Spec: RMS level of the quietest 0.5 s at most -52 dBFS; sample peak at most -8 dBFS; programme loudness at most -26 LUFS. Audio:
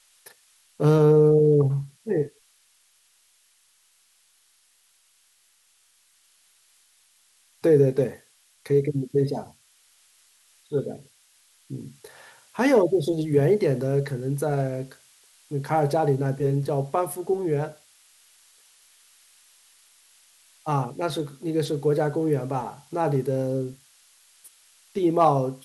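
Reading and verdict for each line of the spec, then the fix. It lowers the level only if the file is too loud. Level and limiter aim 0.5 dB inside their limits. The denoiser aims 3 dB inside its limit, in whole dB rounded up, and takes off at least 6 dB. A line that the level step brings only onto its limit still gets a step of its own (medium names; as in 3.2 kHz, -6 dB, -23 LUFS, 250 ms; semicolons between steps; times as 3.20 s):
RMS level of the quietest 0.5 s -63 dBFS: pass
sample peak -7.5 dBFS: fail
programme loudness -23.5 LUFS: fail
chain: trim -3 dB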